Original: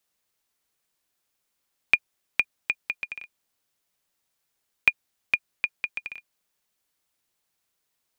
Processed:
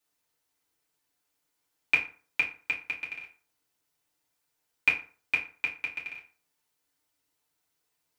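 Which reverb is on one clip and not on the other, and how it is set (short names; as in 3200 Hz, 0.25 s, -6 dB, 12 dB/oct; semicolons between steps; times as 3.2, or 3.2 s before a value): FDN reverb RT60 0.41 s, low-frequency decay 0.95×, high-frequency decay 0.65×, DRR -5 dB; gain -6.5 dB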